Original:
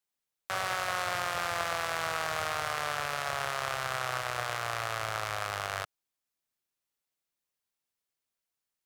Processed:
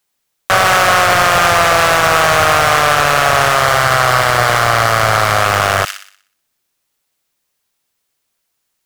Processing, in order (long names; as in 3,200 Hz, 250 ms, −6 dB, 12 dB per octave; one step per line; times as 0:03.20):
0:03.57–0:05.41: notch filter 2,500 Hz, Q 6.7
leveller curve on the samples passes 3
delay with a high-pass on its return 61 ms, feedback 45%, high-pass 2,800 Hz, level −8.5 dB
boost into a limiter +23.5 dB
level −1 dB